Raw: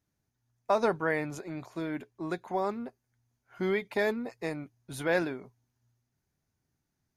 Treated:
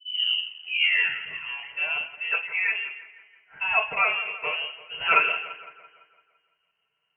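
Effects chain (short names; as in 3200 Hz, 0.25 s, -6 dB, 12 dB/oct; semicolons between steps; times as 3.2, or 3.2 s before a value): tape start at the beginning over 1.76 s; split-band echo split 570 Hz, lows 83 ms, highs 0.169 s, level -13.5 dB; reverb RT60 0.30 s, pre-delay 3 ms, DRR -5.5 dB; inverted band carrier 3000 Hz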